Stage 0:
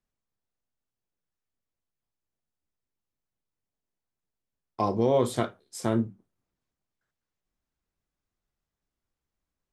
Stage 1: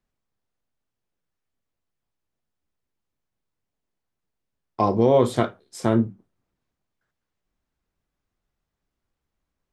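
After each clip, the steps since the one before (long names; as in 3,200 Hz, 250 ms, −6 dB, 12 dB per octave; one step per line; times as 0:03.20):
high-shelf EQ 5,500 Hz −9 dB
level +6 dB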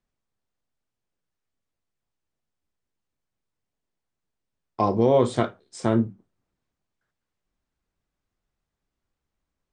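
linear-phase brick-wall low-pass 9,600 Hz
level −1.5 dB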